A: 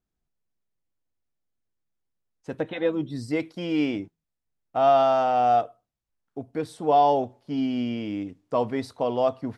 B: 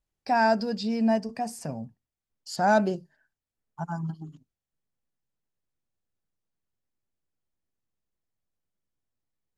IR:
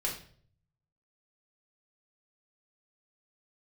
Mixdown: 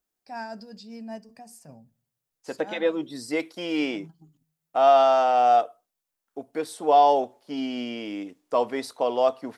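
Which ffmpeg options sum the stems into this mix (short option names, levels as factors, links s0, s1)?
-filter_complex "[0:a]highpass=350,volume=1.26,asplit=2[s0][s1];[1:a]tremolo=f=5.2:d=0.48,volume=0.251,asplit=2[s2][s3];[s3]volume=0.0631[s4];[s1]apad=whole_len=422303[s5];[s2][s5]sidechaincompress=threshold=0.02:ratio=8:attack=6.8:release=159[s6];[2:a]atrim=start_sample=2205[s7];[s4][s7]afir=irnorm=-1:irlink=0[s8];[s0][s6][s8]amix=inputs=3:normalize=0,highshelf=f=7200:g=10"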